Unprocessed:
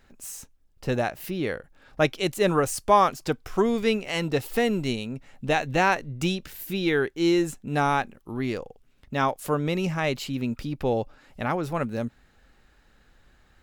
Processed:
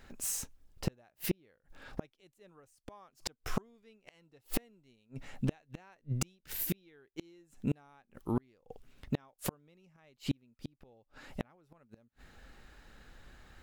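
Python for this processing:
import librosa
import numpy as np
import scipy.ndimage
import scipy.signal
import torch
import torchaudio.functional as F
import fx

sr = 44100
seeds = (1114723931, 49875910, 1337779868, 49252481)

y = fx.gate_flip(x, sr, shuts_db=-22.0, range_db=-40)
y = y * 10.0 ** (3.0 / 20.0)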